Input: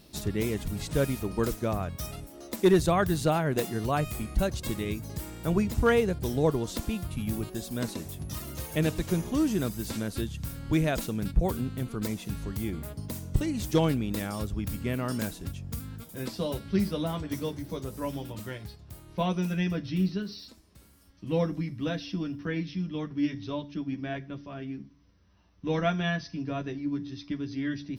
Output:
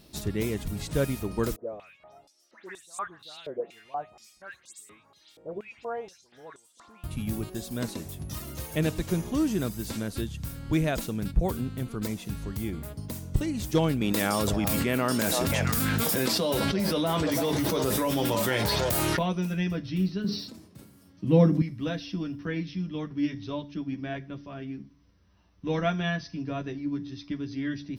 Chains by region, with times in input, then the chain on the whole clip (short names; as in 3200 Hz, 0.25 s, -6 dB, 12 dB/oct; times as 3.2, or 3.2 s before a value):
1.56–7.04 dispersion highs, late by 0.139 s, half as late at 2600 Hz + stepped band-pass 4.2 Hz 510–8000 Hz
14.01–19.19 HPF 330 Hz 6 dB/oct + delay with a stepping band-pass 0.333 s, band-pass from 710 Hz, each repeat 1.4 oct, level -8 dB + fast leveller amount 100%
20.24–21.62 HPF 110 Hz 24 dB/oct + low shelf 500 Hz +11 dB + sustainer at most 81 dB/s
whole clip: dry